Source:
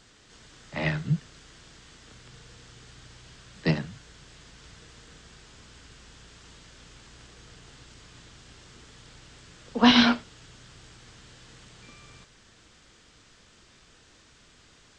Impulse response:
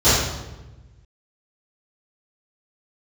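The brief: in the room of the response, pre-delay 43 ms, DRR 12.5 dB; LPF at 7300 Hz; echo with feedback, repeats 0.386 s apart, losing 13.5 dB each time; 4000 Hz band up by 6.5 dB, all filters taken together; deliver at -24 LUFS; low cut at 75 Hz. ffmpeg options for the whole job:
-filter_complex "[0:a]highpass=75,lowpass=7.3k,equalizer=f=4k:t=o:g=8.5,aecho=1:1:386|772:0.211|0.0444,asplit=2[a][b];[1:a]atrim=start_sample=2205,adelay=43[c];[b][c]afir=irnorm=-1:irlink=0,volume=-36dB[d];[a][d]amix=inputs=2:normalize=0,volume=-2dB"

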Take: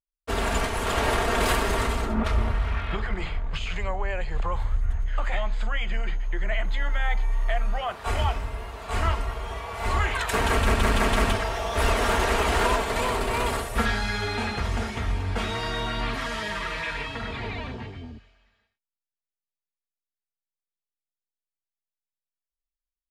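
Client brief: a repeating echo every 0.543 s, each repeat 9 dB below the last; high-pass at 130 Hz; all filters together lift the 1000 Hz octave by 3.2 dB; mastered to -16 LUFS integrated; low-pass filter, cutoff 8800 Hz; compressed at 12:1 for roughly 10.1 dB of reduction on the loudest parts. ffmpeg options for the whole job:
-af "highpass=130,lowpass=8.8k,equalizer=f=1k:t=o:g=4,acompressor=threshold=-28dB:ratio=12,aecho=1:1:543|1086|1629|2172:0.355|0.124|0.0435|0.0152,volume=16dB"

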